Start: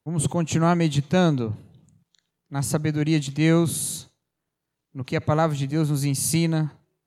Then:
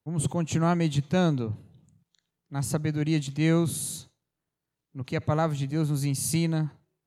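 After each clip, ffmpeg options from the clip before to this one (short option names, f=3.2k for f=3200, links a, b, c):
-af "equalizer=f=87:t=o:w=2.1:g=2.5,volume=-5dB"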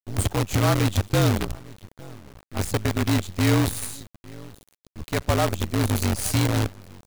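-filter_complex "[0:a]afreqshift=-47,asplit=2[a][b];[b]adelay=857,lowpass=f=1.7k:p=1,volume=-17.5dB,asplit=2[c][d];[d]adelay=857,lowpass=f=1.7k:p=1,volume=0.2[e];[a][c][e]amix=inputs=3:normalize=0,acrusher=bits=5:dc=4:mix=0:aa=0.000001,volume=3dB"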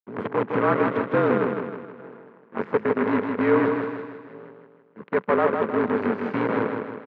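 -filter_complex "[0:a]aeval=exprs='sgn(val(0))*max(abs(val(0))-0.01,0)':c=same,highpass=f=190:w=0.5412,highpass=f=190:w=1.3066,equalizer=f=200:t=q:w=4:g=4,equalizer=f=300:t=q:w=4:g=-4,equalizer=f=440:t=q:w=4:g=8,equalizer=f=720:t=q:w=4:g=-5,equalizer=f=1k:t=q:w=4:g=5,equalizer=f=1.5k:t=q:w=4:g=3,lowpass=f=2k:w=0.5412,lowpass=f=2k:w=1.3066,asplit=2[a][b];[b]aecho=0:1:158|316|474|632|790|948:0.562|0.276|0.135|0.0662|0.0324|0.0159[c];[a][c]amix=inputs=2:normalize=0,volume=1.5dB"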